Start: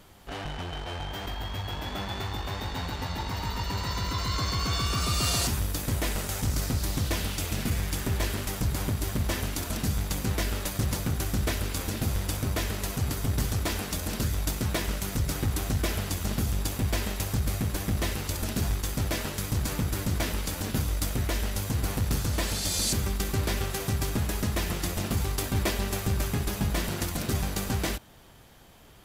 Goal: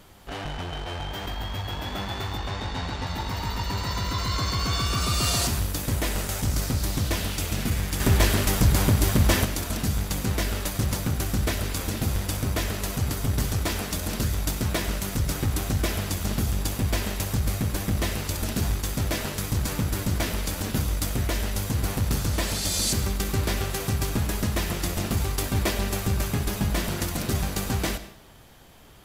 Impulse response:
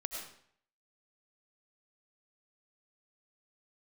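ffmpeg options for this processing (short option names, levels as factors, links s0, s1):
-filter_complex "[0:a]asettb=1/sr,asplit=3[s0][s1][s2];[s0]atrim=end=2.384[s3];[s1]atrim=start=2.38:end=3.07,asetpts=PTS-STARTPTS,afade=t=in:d=0.004:c=qsin,afade=t=out:st=0.686:d=0.004:c=qsin,lowpass=7700[s4];[s2]atrim=start=3.066[s5];[s3][s4]acrossfade=d=0.004:c1=hsin:c2=qsin[s6];[s6][s5]acrossfade=d=0.004:c1=qsin:c2=hsin,asettb=1/sr,asplit=3[s7][s8][s9];[s7]atrim=end=8.004[s10];[s8]atrim=start=8:end=9.45,asetpts=PTS-STARTPTS,afade=t=in:d=0.004:c=qsin,afade=t=out:st=1.446:d=0.004:c=qsin,acontrast=59[s11];[s9]atrim=start=9.446[s12];[s10][s11]acrossfade=d=0.004:c1=hsin:c2=qsin[s13];[s13][s12]acrossfade=d=0.004:c1=qsin:c2=hsin,asplit=2[s14][s15];[1:a]atrim=start_sample=2205[s16];[s15][s16]afir=irnorm=-1:irlink=0,volume=0.376[s17];[s14][s17]amix=inputs=2:normalize=0"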